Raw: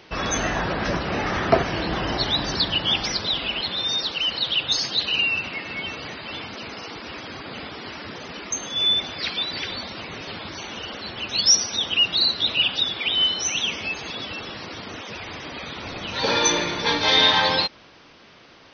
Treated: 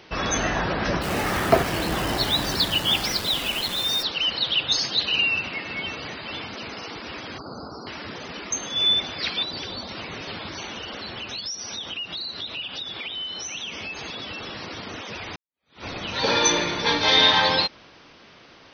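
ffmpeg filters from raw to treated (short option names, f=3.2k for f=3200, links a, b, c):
-filter_complex "[0:a]asplit=3[a][b][c];[a]afade=t=out:st=1.01:d=0.02[d];[b]acrusher=bits=6:dc=4:mix=0:aa=0.000001,afade=t=in:st=1.01:d=0.02,afade=t=out:st=4.02:d=0.02[e];[c]afade=t=in:st=4.02:d=0.02[f];[d][e][f]amix=inputs=3:normalize=0,asettb=1/sr,asplit=3[g][h][i];[g]atrim=end=7.384[j];[h]atrim=start=7.38:end=7.87,asetpts=PTS-STARTPTS,afade=t=in:d=0.004:c=qsin,afade=t=out:st=0.486:d=0.004:c=qsin,asuperstop=centerf=2500:order=20:qfactor=0.89[k];[i]atrim=start=7.866[l];[j][k]acrossfade=d=0.004:c1=hsin:c2=qsin[m];[m][l]acrossfade=d=0.004:c1=qsin:c2=hsin,asettb=1/sr,asplit=3[n][o][p];[n]atrim=end=9.434[q];[o]atrim=start=9.43:end=9.89,asetpts=PTS-STARTPTS,afade=t=in:d=0.004:c=qsin,afade=t=out:st=0.456:d=0.004:c=qsin,equalizer=f=2.1k:t=o:w=1.1:g=-9.5[r];[p]atrim=start=9.886[s];[q][r]acrossfade=d=0.004:c1=hsin:c2=qsin[t];[t][s]acrossfade=d=0.004:c1=qsin:c2=hsin,asettb=1/sr,asplit=3[u][v][w];[u]atrim=end=10.694[x];[v]atrim=start=10.69:end=14.61,asetpts=PTS-STARTPTS,afade=t=in:d=0.004:c=qsin,afade=t=out:st=3.916:d=0.004:c=qsin,acompressor=threshold=-30dB:ratio=6:attack=3.2:release=140:knee=1:detection=peak[y];[w]atrim=start=14.606[z];[x][y]acrossfade=d=0.004:c1=hsin:c2=qsin[aa];[aa][z]acrossfade=d=0.004:c1=qsin:c2=hsin,asplit=2[ab][ac];[ab]atrim=end=15.36,asetpts=PTS-STARTPTS,afade=t=out:st=15.356:d=0.004:c=hsin[ad];[ac]atrim=start=15.36,asetpts=PTS-STARTPTS,afade=t=in:d=0.48:c=exp[ae];[ad][ae]concat=n=2:v=0:a=1"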